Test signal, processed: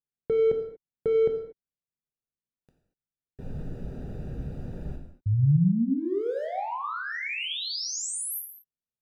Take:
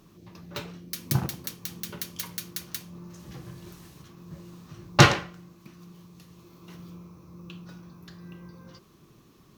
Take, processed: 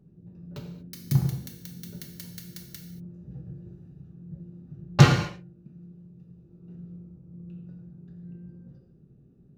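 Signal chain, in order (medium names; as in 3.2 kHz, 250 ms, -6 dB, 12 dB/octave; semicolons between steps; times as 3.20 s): local Wiener filter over 41 samples; bass shelf 300 Hz +8.5 dB; gated-style reverb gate 260 ms falling, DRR 2 dB; trim -7.5 dB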